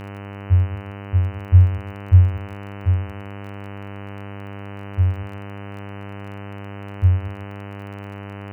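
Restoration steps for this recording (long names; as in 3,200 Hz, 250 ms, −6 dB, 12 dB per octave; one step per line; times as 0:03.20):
click removal
hum removal 100.1 Hz, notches 30
echo removal 160 ms −18 dB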